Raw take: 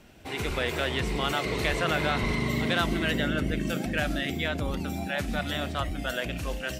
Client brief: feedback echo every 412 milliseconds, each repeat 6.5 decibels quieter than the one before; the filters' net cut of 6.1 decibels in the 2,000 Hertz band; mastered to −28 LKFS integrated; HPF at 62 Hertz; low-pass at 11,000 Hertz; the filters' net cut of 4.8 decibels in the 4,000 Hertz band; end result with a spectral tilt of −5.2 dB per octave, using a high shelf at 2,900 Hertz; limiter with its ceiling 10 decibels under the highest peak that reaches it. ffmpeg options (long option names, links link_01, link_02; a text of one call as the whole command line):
ffmpeg -i in.wav -af "highpass=62,lowpass=11000,equalizer=frequency=2000:width_type=o:gain=-8.5,highshelf=frequency=2900:gain=5,equalizer=frequency=4000:width_type=o:gain=-6.5,alimiter=level_in=0.5dB:limit=-24dB:level=0:latency=1,volume=-0.5dB,aecho=1:1:412|824|1236|1648|2060|2472:0.473|0.222|0.105|0.0491|0.0231|0.0109,volume=5.5dB" out.wav